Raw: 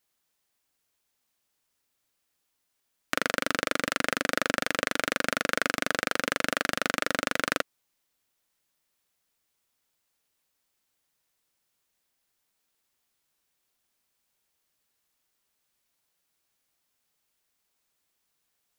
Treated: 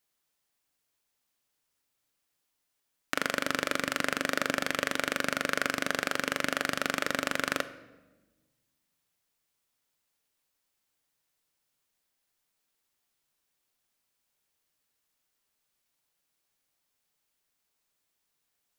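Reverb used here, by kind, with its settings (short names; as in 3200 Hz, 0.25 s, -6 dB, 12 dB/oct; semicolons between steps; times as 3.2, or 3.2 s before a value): shoebox room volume 780 m³, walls mixed, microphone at 0.36 m; gain -2.5 dB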